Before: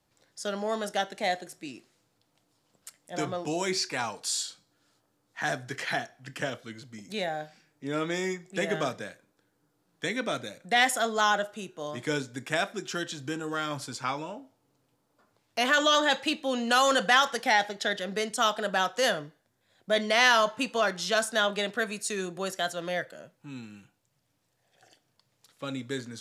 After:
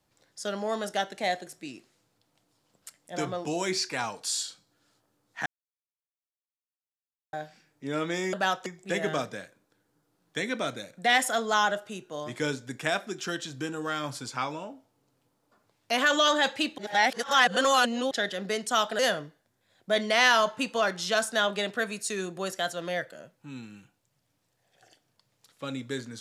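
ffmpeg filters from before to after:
-filter_complex "[0:a]asplit=8[a][b][c][d][e][f][g][h];[a]atrim=end=5.46,asetpts=PTS-STARTPTS,afade=t=out:st=5.456:d=0.004:c=hsin[i];[b]atrim=start=5.46:end=7.33,asetpts=PTS-STARTPTS,volume=0[j];[c]atrim=start=7.33:end=8.332,asetpts=PTS-STARTPTS,afade=t=in:d=0.004:c=hsin[k];[d]atrim=start=18.658:end=18.992[l];[e]atrim=start=8.328:end=16.452[m];[f]atrim=start=16.448:end=17.782,asetpts=PTS-STARTPTS,areverse[n];[g]atrim=start=17.778:end=18.662[o];[h]atrim=start=18.988[p];[i][j][k]concat=n=3:v=0:a=1[q];[q][l]acrossfade=d=0.004:c1=hsin:c2=hsin[r];[r][m]acrossfade=d=0.004:c1=hsin:c2=hsin[s];[s][n]acrossfade=d=0.004:c1=hsin:c2=hsin[t];[t][o]acrossfade=d=0.004:c1=hsin:c2=hsin[u];[u][p]acrossfade=d=0.004:c1=hsin:c2=hsin"

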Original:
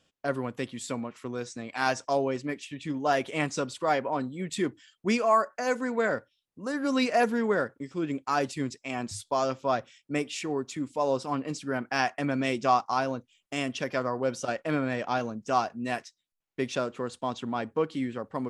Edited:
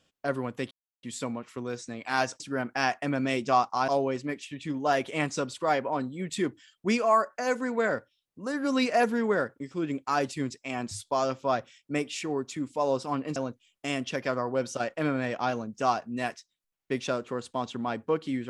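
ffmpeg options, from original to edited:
-filter_complex "[0:a]asplit=5[a][b][c][d][e];[a]atrim=end=0.71,asetpts=PTS-STARTPTS,afade=t=out:st=0.706:d=0.004:c=hsin,apad=pad_dur=0.32[f];[b]atrim=start=0.71:end=2.082,asetpts=PTS-STARTPTS,afade=t=in:d=0.004:c=hsin[g];[c]atrim=start=11.558:end=13.042[h];[d]atrim=start=2.078:end=11.562[i];[e]atrim=start=13.038[j];[f][g]concat=n=2:v=0:a=1[k];[k][h]acrossfade=d=0.004:c1=hsin:c2=hsin[l];[l][i]acrossfade=d=0.004:c1=hsin:c2=hsin[m];[m][j]acrossfade=d=0.004:c1=hsin:c2=hsin"

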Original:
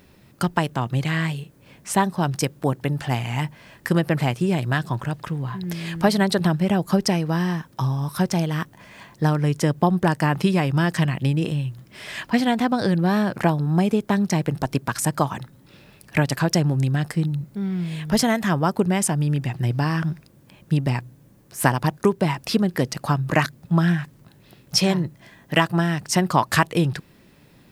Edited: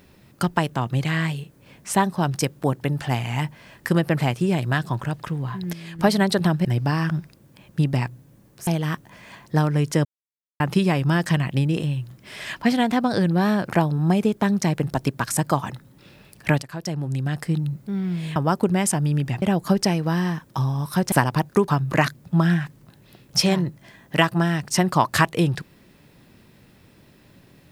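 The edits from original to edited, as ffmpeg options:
-filter_complex "[0:a]asplit=12[a][b][c][d][e][f][g][h][i][j][k][l];[a]atrim=end=5.732[m];[b]atrim=start=5.728:end=5.992,asetpts=PTS-STARTPTS,volume=-7.5dB[n];[c]atrim=start=5.988:end=6.652[o];[d]atrim=start=19.578:end=21.602[p];[e]atrim=start=8.348:end=9.73,asetpts=PTS-STARTPTS,afade=t=out:st=1.378:d=0.004:c=hsin[q];[f]atrim=start=9.73:end=10.28,asetpts=PTS-STARTPTS,volume=0[r];[g]atrim=start=10.28:end=16.3,asetpts=PTS-STARTPTS,afade=t=in:d=0.004:c=hsin,afade=t=out:st=6.016:d=0.004:c=hsin:silence=0.133352[s];[h]atrim=start=16.3:end=18.042,asetpts=PTS-STARTPTS,afade=t=in:d=1.02:silence=0.133352[t];[i]atrim=start=18.518:end=19.582[u];[j]atrim=start=6.648:end=8.352[v];[k]atrim=start=21.598:end=22.162[w];[l]atrim=start=23.058[x];[m][n]acrossfade=d=0.004:c1=hsin:c2=hsin[y];[y][o]acrossfade=d=0.004:c1=hsin:c2=hsin[z];[z][p]acrossfade=d=0.004:c1=hsin:c2=hsin[aa];[q][r][s][t]concat=n=4:v=0:a=1[ab];[aa][ab]acrossfade=d=0.004:c1=hsin:c2=hsin[ac];[ac][u]acrossfade=d=0.004:c1=hsin:c2=hsin[ad];[ad][v]acrossfade=d=0.004:c1=hsin:c2=hsin[ae];[ae][w]acrossfade=d=0.004:c1=hsin:c2=hsin[af];[af][x]acrossfade=d=0.004:c1=hsin:c2=hsin"

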